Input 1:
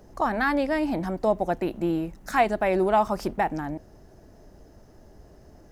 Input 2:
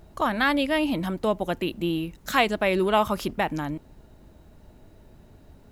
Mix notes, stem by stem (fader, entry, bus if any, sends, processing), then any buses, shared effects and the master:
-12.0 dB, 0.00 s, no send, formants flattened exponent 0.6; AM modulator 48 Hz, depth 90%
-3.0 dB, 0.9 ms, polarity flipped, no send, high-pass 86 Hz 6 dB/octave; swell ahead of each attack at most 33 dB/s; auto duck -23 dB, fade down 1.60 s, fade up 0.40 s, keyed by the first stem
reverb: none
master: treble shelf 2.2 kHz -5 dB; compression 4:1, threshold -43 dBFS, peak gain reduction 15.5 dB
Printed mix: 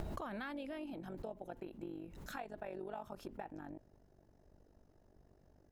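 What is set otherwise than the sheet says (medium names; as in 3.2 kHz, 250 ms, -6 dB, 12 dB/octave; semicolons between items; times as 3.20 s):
stem 1: missing formants flattened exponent 0.6; stem 2: missing high-pass 86 Hz 6 dB/octave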